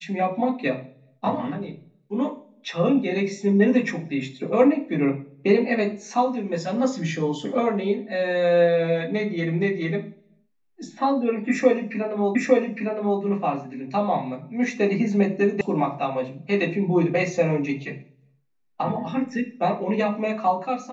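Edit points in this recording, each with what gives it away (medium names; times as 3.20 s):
12.35 s: repeat of the last 0.86 s
15.61 s: sound stops dead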